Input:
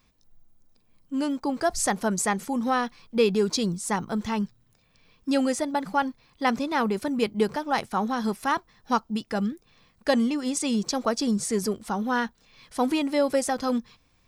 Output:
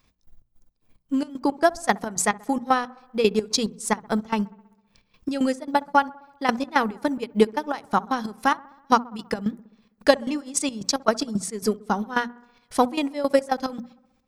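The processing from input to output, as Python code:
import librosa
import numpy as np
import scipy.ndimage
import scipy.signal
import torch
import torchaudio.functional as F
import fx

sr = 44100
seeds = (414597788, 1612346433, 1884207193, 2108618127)

p1 = fx.chopper(x, sr, hz=3.7, depth_pct=60, duty_pct=55)
p2 = fx.transient(p1, sr, attack_db=8, sustain_db=-9)
p3 = fx.hum_notches(p2, sr, base_hz=60, count=4)
y = p3 + fx.echo_wet_lowpass(p3, sr, ms=65, feedback_pct=64, hz=1400.0, wet_db=-22.0, dry=0)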